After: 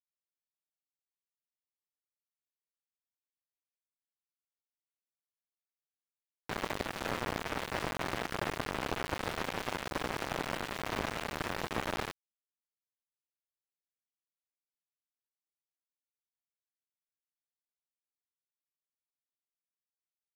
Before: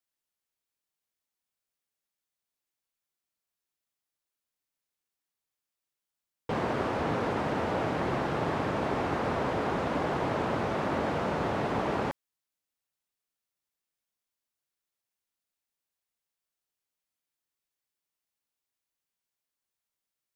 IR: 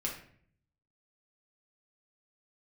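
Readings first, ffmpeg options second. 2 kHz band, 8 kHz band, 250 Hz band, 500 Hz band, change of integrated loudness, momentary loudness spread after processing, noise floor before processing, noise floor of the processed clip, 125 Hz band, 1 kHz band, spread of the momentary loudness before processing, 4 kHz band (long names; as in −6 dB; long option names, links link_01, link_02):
−1.5 dB, +5.5 dB, −9.5 dB, −9.0 dB, −6.5 dB, 2 LU, below −85 dBFS, below −85 dBFS, −8.5 dB, −7.0 dB, 1 LU, +2.0 dB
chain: -af "aeval=exprs='0.168*(cos(1*acos(clip(val(0)/0.168,-1,1)))-cos(1*PI/2))+0.0531*(cos(7*acos(clip(val(0)/0.168,-1,1)))-cos(7*PI/2))+0.00237*(cos(8*acos(clip(val(0)/0.168,-1,1)))-cos(8*PI/2))':channel_layout=same,aeval=exprs='val(0)*gte(abs(val(0)),0.0299)':channel_layout=same,volume=-3dB"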